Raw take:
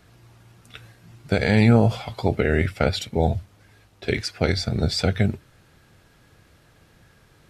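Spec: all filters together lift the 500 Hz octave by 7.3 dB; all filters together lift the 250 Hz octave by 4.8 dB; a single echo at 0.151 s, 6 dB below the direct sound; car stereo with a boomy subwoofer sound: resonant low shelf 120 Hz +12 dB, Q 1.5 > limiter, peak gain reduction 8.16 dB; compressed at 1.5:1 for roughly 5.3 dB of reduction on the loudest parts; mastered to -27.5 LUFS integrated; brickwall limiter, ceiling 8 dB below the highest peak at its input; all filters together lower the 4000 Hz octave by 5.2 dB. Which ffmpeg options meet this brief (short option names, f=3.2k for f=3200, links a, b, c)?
-af "equalizer=f=250:t=o:g=7,equalizer=f=500:t=o:g=7.5,equalizer=f=4k:t=o:g=-6.5,acompressor=threshold=-19dB:ratio=1.5,alimiter=limit=-11dB:level=0:latency=1,lowshelf=f=120:t=q:w=1.5:g=12,aecho=1:1:151:0.501,volume=-2.5dB,alimiter=limit=-17.5dB:level=0:latency=1"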